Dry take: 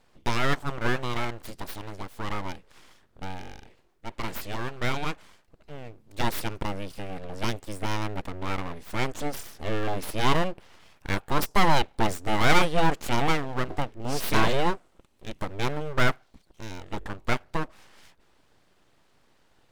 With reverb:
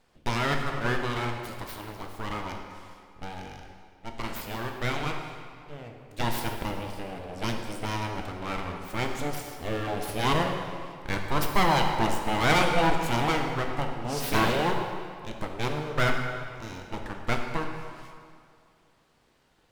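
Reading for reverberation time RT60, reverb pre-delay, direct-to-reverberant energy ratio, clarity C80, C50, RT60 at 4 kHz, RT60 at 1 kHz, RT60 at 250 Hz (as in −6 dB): 2.2 s, 10 ms, 2.5 dB, 5.5 dB, 4.0 dB, 1.7 s, 2.3 s, 2.2 s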